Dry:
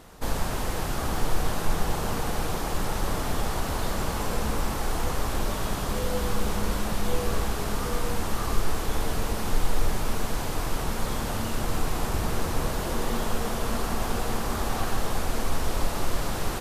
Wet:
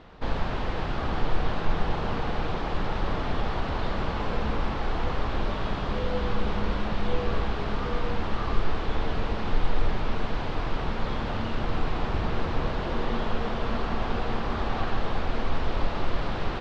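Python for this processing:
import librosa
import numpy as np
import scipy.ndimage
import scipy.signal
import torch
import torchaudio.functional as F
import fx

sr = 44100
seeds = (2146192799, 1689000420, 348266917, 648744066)

y = scipy.signal.sosfilt(scipy.signal.butter(4, 3900.0, 'lowpass', fs=sr, output='sos'), x)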